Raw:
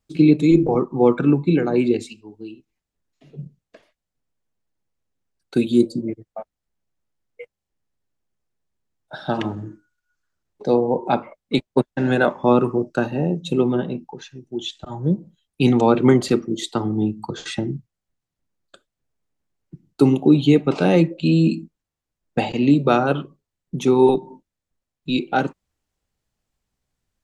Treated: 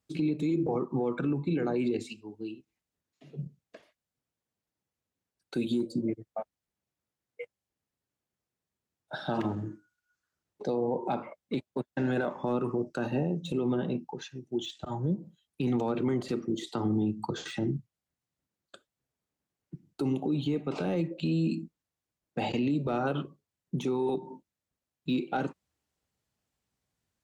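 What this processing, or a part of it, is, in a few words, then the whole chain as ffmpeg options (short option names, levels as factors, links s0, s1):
podcast mastering chain: -af "highpass=77,deesser=0.95,acompressor=threshold=0.112:ratio=4,alimiter=limit=0.126:level=0:latency=1:release=47,volume=0.75" -ar 48000 -c:a libmp3lame -b:a 96k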